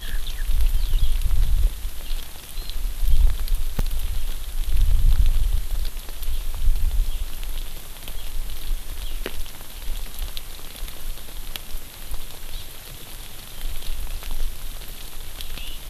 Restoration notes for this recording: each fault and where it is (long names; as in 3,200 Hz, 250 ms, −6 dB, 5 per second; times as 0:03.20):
0:03.79: drop-out 3 ms